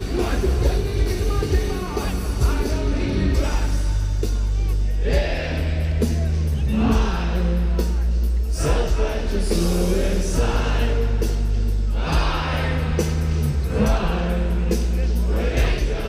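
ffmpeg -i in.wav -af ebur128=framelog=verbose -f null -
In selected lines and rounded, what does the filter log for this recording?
Integrated loudness:
  I:         -22.3 LUFS
  Threshold: -32.3 LUFS
Loudness range:
  LRA:         1.1 LU
  Threshold: -42.3 LUFS
  LRA low:   -23.0 LUFS
  LRA high:  -21.9 LUFS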